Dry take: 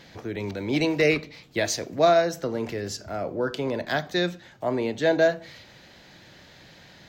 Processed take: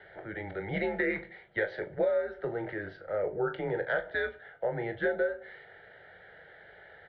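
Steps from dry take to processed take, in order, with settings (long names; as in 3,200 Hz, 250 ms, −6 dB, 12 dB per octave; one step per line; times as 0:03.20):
phaser with its sweep stopped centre 1,800 Hz, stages 8
single-sideband voice off tune −110 Hz 260–2,700 Hz
downward compressor 10 to 1, threshold −28 dBFS, peak gain reduction 13 dB
ambience of single reflections 21 ms −10 dB, 39 ms −12.5 dB
level +2 dB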